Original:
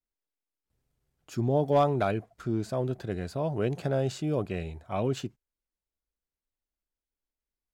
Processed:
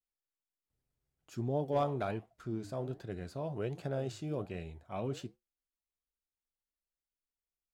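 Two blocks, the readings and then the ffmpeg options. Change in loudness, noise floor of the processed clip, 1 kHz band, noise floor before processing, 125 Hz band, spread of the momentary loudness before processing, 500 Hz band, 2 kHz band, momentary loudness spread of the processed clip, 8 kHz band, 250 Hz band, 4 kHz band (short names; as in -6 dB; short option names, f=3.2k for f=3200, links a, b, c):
-8.5 dB, under -85 dBFS, -8.5 dB, under -85 dBFS, -8.0 dB, 11 LU, -8.5 dB, -8.5 dB, 11 LU, -8.5 dB, -8.5 dB, -8.5 dB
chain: -af "flanger=delay=6.8:depth=8.2:regen=-77:speed=1.3:shape=sinusoidal,volume=-4dB"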